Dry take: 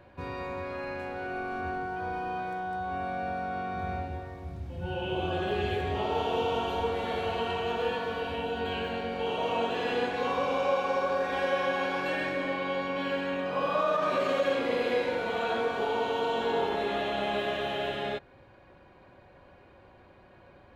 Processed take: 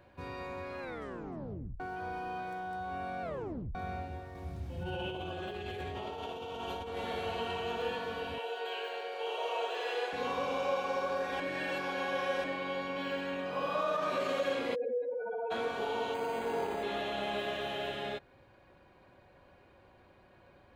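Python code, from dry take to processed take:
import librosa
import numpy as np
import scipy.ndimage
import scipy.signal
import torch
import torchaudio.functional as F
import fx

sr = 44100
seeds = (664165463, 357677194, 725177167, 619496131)

y = fx.over_compress(x, sr, threshold_db=-34.0, ratio=-1.0, at=(4.35, 6.97))
y = fx.steep_highpass(y, sr, hz=370.0, slope=48, at=(8.38, 10.13))
y = fx.spec_expand(y, sr, power=3.3, at=(14.74, 15.5), fade=0.02)
y = fx.resample_linear(y, sr, factor=8, at=(16.14, 16.83))
y = fx.edit(y, sr, fx.tape_stop(start_s=0.8, length_s=1.0),
    fx.tape_stop(start_s=3.22, length_s=0.53),
    fx.reverse_span(start_s=11.4, length_s=1.04), tone=tone)
y = fx.high_shelf(y, sr, hz=4700.0, db=6.5)
y = F.gain(torch.from_numpy(y), -5.5).numpy()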